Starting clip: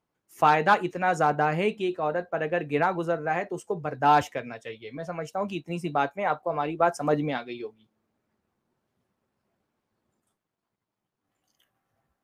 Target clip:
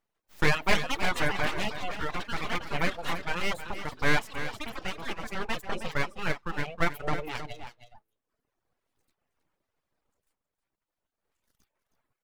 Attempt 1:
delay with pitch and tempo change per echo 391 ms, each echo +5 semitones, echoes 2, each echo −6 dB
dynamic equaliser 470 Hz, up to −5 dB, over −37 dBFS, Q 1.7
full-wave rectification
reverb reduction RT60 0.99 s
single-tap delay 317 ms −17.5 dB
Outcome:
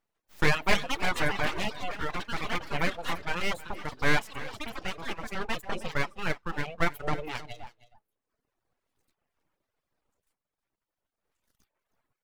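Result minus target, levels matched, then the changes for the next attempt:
echo-to-direct −6.5 dB
change: single-tap delay 317 ms −11 dB

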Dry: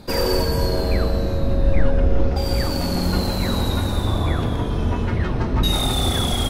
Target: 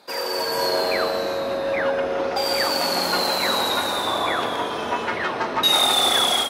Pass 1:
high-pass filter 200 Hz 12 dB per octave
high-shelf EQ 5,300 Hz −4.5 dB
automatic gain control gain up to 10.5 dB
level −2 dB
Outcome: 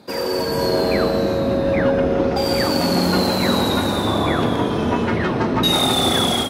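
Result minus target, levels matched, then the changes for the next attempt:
250 Hz band +10.5 dB
change: high-pass filter 650 Hz 12 dB per octave

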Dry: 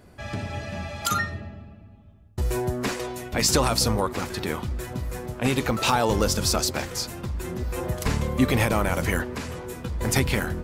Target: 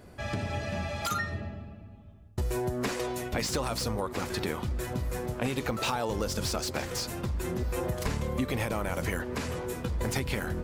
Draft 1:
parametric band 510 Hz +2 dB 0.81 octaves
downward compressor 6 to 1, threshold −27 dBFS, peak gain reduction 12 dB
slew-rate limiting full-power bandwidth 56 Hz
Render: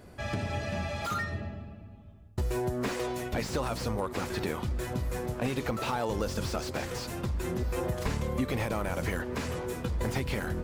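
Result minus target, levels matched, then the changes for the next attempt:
slew-rate limiting: distortion +6 dB
change: slew-rate limiting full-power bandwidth 174.5 Hz

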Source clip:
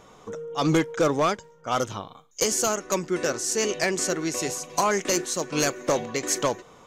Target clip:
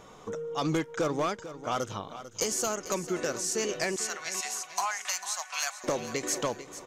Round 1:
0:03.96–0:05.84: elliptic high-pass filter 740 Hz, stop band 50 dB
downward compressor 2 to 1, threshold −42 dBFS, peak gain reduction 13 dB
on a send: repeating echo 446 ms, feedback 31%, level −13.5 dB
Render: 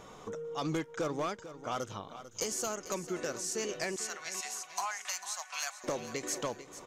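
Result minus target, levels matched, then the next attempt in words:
downward compressor: peak gain reduction +5.5 dB
0:03.96–0:05.84: elliptic high-pass filter 740 Hz, stop band 50 dB
downward compressor 2 to 1, threshold −31.5 dBFS, peak gain reduction 7.5 dB
on a send: repeating echo 446 ms, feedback 31%, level −13.5 dB

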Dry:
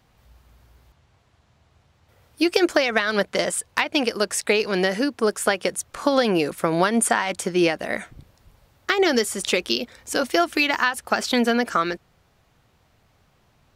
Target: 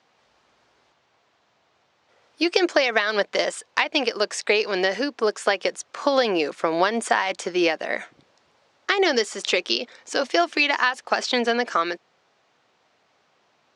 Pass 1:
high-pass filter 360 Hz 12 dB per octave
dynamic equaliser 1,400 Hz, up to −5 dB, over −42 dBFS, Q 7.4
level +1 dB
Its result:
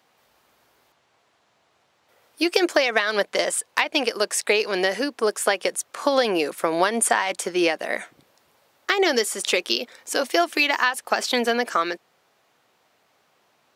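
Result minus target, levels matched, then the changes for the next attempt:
8,000 Hz band +7.0 dB
add after dynamic equaliser: low-pass filter 6,600 Hz 24 dB per octave

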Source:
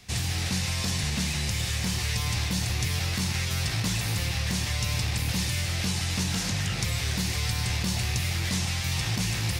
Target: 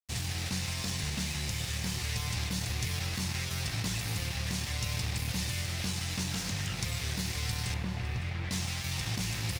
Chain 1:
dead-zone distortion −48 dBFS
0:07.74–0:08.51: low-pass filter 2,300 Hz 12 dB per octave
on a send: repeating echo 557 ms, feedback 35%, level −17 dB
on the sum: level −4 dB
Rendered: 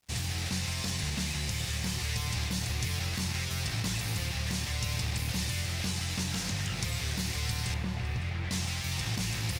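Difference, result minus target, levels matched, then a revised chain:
dead-zone distortion: distortion −9 dB
dead-zone distortion −39.5 dBFS
0:07.74–0:08.51: low-pass filter 2,300 Hz 12 dB per octave
on a send: repeating echo 557 ms, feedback 35%, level −17 dB
on the sum: level −4 dB

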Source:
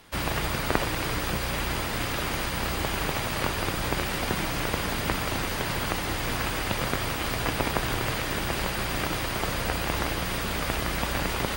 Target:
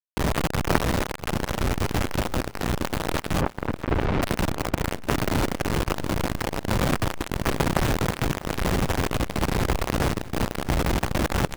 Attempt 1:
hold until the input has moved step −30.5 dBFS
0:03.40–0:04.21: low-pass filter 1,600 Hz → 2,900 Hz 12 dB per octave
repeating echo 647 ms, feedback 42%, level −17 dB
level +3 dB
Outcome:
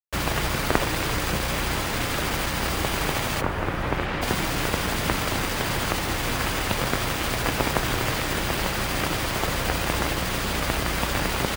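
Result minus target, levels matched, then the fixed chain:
hold until the input has moved: distortion −15 dB
hold until the input has moved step −19 dBFS
0:03.40–0:04.21: low-pass filter 1,600 Hz → 2,900 Hz 12 dB per octave
repeating echo 647 ms, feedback 42%, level −17 dB
level +3 dB

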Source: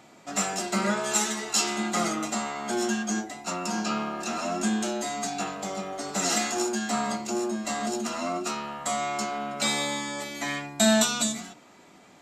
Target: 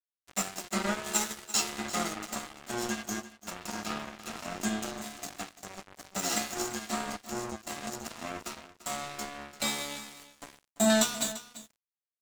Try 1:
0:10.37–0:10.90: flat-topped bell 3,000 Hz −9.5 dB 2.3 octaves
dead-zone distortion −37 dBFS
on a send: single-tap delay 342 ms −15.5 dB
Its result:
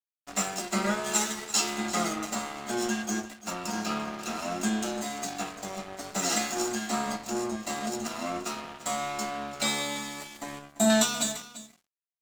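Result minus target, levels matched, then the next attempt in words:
dead-zone distortion: distortion −8 dB
0:10.37–0:10.90: flat-topped bell 3,000 Hz −9.5 dB 2.3 octaves
dead-zone distortion −29 dBFS
on a send: single-tap delay 342 ms −15.5 dB

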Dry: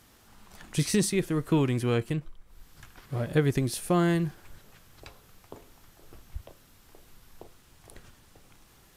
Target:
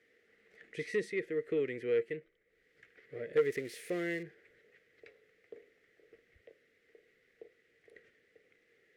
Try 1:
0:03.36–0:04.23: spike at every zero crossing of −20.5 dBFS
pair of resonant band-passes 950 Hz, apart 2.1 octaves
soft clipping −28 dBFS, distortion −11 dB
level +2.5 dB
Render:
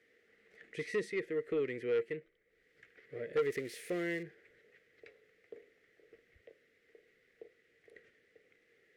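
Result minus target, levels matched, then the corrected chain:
soft clipping: distortion +6 dB
0:03.36–0:04.23: spike at every zero crossing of −20.5 dBFS
pair of resonant band-passes 950 Hz, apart 2.1 octaves
soft clipping −22 dBFS, distortion −17 dB
level +2.5 dB

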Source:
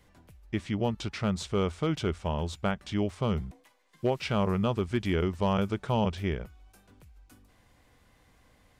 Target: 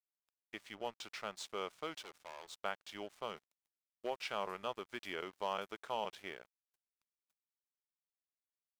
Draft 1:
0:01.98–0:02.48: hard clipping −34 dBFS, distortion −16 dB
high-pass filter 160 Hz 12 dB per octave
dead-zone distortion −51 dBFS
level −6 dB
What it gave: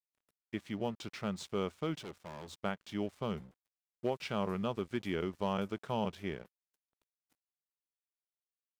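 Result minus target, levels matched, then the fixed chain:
125 Hz band +15.0 dB
0:01.98–0:02.48: hard clipping −34 dBFS, distortion −16 dB
high-pass filter 610 Hz 12 dB per octave
dead-zone distortion −51 dBFS
level −6 dB

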